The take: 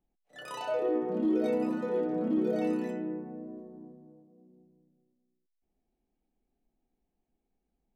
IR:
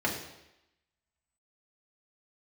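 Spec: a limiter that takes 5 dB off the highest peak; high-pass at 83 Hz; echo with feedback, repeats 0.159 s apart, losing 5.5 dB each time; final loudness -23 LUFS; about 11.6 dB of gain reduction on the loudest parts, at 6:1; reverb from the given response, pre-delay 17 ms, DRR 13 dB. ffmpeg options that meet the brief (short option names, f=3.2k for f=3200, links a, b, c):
-filter_complex "[0:a]highpass=83,acompressor=threshold=-37dB:ratio=6,alimiter=level_in=10.5dB:limit=-24dB:level=0:latency=1,volume=-10.5dB,aecho=1:1:159|318|477|636|795|954|1113:0.531|0.281|0.149|0.079|0.0419|0.0222|0.0118,asplit=2[a][b];[1:a]atrim=start_sample=2205,adelay=17[c];[b][c]afir=irnorm=-1:irlink=0,volume=-22.5dB[d];[a][d]amix=inputs=2:normalize=0,volume=18.5dB"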